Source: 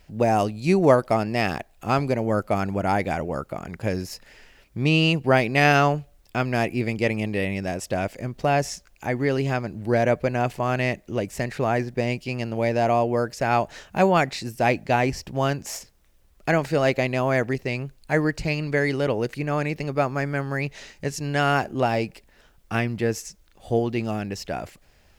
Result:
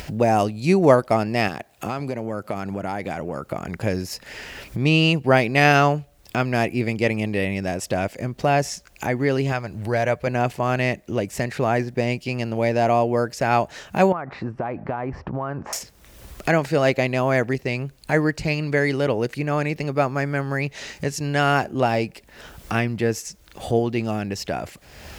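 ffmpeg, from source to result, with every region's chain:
-filter_complex "[0:a]asettb=1/sr,asplit=3[s0][s1][s2];[s0]atrim=end=1.484[s3];[s1]atrim=start=1.48:end=3.46,asetpts=PTS-STARTPTS,afade=t=in:d=0.004:c=qsin,afade=t=out:st=1.976:d=0.004:c=qsin,highpass=91,acompressor=threshold=0.0355:ratio=2.5:attack=3.2:release=140:knee=1:detection=peak[s4];[s2]atrim=start=3.456[s5];[s3][s4]acrossfade=d=0.004:c1=hsin:c2=qsin[s6];[s6][s5]acrossfade=d=0.004:c1=qsin:c2=hsin,asettb=1/sr,asplit=3[s7][s8][s9];[s7]atrim=end=9.524[s10];[s8]atrim=start=9.52:end=10.27,asetpts=PTS-STARTPTS,afade=t=in:d=0.004:c=qsin,afade=t=out:st=0.746:d=0.004:c=qsin,acompressor=mode=upward:threshold=0.0316:ratio=2.5:attack=3.2:release=140:knee=2.83:detection=peak,equalizer=f=270:w=0.85:g=-8.5[s11];[s9]atrim=start=10.266[s12];[s10][s11]acrossfade=d=0.004:c1=hsin:c2=qsin[s13];[s13][s12]acrossfade=d=0.004:c1=qsin:c2=hsin,asettb=1/sr,asplit=3[s14][s15][s16];[s14]atrim=end=14.124[s17];[s15]atrim=start=14.12:end=15.73,asetpts=PTS-STARTPTS,afade=t=in:d=0.004:c=qsin,afade=t=out:st=1.606:d=0.004:c=qsin,lowpass=f=1200:t=q:w=2.6,acompressor=threshold=0.0501:ratio=12:attack=3.2:release=140:knee=1:detection=peak[s18];[s16]atrim=start=15.726[s19];[s17][s18]acrossfade=d=0.004:c1=hsin:c2=qsin[s20];[s20][s19]acrossfade=d=0.004:c1=qsin:c2=hsin,highpass=54,acompressor=mode=upward:threshold=0.0631:ratio=2.5,volume=1.26"

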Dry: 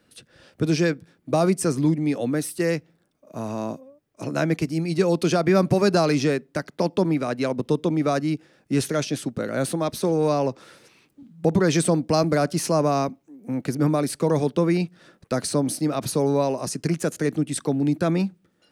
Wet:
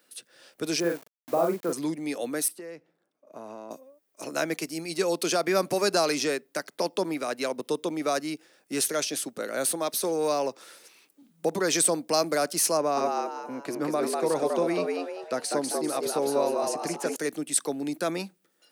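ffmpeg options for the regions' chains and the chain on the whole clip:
-filter_complex "[0:a]asettb=1/sr,asplit=3[s0][s1][s2];[s0]atrim=end=0.804[s3];[s1]atrim=start=0.8:end=1.73,asetpts=PTS-STARTPTS,afade=t=in:d=0.004:c=qsin,afade=t=out:st=0.926:d=0.004:c=qsin,lowpass=1200,aeval=exprs='val(0)*gte(abs(val(0)),0.0112)':c=same,asplit=2[s4][s5];[s5]adelay=41,volume=0.631[s6];[s4][s6]amix=inputs=2:normalize=0,atrim=end_sample=41013[s7];[s2]atrim=start=1.726[s8];[s3][s7]acrossfade=d=0.004:c1=hsin:c2=qsin[s9];[s9][s8]acrossfade=d=0.004:c1=qsin:c2=hsin,asettb=1/sr,asplit=3[s10][s11][s12];[s10]atrim=end=2.484[s13];[s11]atrim=start=2.48:end=3.71,asetpts=PTS-STARTPTS,afade=t=in:d=0.004:c=qsin,afade=t=out:st=1.226:d=0.004:c=qsin,lowpass=f=1200:p=1,acompressor=threshold=0.0316:ratio=8:attack=3.2:release=140:knee=1:detection=peak[s14];[s12]atrim=start=3.706[s15];[s13][s14]acrossfade=d=0.004:c1=hsin:c2=qsin[s16];[s16][s15]acrossfade=d=0.004:c1=qsin:c2=hsin,asettb=1/sr,asplit=3[s17][s18][s19];[s17]atrim=end=12.774[s20];[s18]atrim=start=12.77:end=17.16,asetpts=PTS-STARTPTS,afade=t=in:d=0.004:c=qsin,afade=t=out:st=4.386:d=0.004:c=qsin,lowpass=f=2600:p=1,asplit=6[s21][s22][s23][s24][s25][s26];[s22]adelay=196,afreqshift=98,volume=0.668[s27];[s23]adelay=392,afreqshift=196,volume=0.248[s28];[s24]adelay=588,afreqshift=294,volume=0.0912[s29];[s25]adelay=784,afreqshift=392,volume=0.0339[s30];[s26]adelay=980,afreqshift=490,volume=0.0126[s31];[s21][s27][s28][s29][s30][s31]amix=inputs=6:normalize=0,atrim=end_sample=193599[s32];[s19]atrim=start=17.156[s33];[s20][s32]acrossfade=d=0.004:c1=hsin:c2=qsin[s34];[s34][s33]acrossfade=d=0.004:c1=qsin:c2=hsin,highpass=380,aemphasis=mode=production:type=50kf,volume=0.708"

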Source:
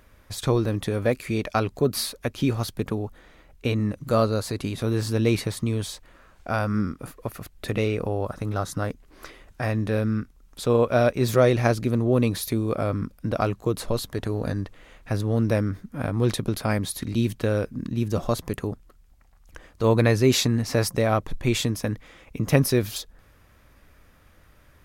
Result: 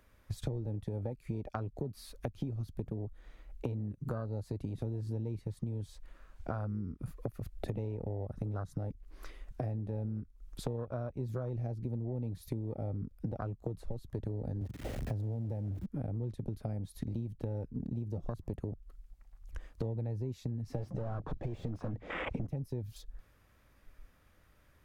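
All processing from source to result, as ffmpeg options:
-filter_complex "[0:a]asettb=1/sr,asplit=3[s0][s1][s2];[s0]atrim=end=14.614[s3];[s1]atrim=start=14.61:end=15.86,asetpts=PTS-STARTPTS,afade=t=in:d=0.004:c=qsin,afade=t=out:st=1.246:d=0.004:c=qsin,aeval=exprs='val(0)+0.5*0.0531*sgn(val(0))':c=same,highpass=f=50:w=0.5412,highpass=f=50:w=1.3066[s4];[s2]atrim=start=15.856[s5];[s3][s4]acrossfade=d=0.004:c1=hsin:c2=qsin[s6];[s6][s5]acrossfade=d=0.004:c1=qsin:c2=hsin,asettb=1/sr,asplit=3[s7][s8][s9];[s7]atrim=end=20.754[s10];[s8]atrim=start=20.75:end=22.47,asetpts=PTS-STARTPTS,afade=t=in:d=0.004:c=qsin,afade=t=out:st=1.716:d=0.004:c=qsin,lowpass=8900,asplit=2[s11][s12];[s12]highpass=f=720:p=1,volume=79.4,asoftclip=type=tanh:threshold=0.355[s13];[s11][s13]amix=inputs=2:normalize=0,lowpass=f=1400:p=1,volume=0.501[s14];[s9]atrim=start=22.466[s15];[s10][s14]acrossfade=d=0.004:c1=hsin:c2=qsin[s16];[s16][s15]acrossfade=d=0.004:c1=qsin:c2=hsin,acrossover=split=140[s17][s18];[s18]acompressor=threshold=0.0141:ratio=2[s19];[s17][s19]amix=inputs=2:normalize=0,afwtdn=0.0251,acompressor=threshold=0.01:ratio=16,volume=2.11"

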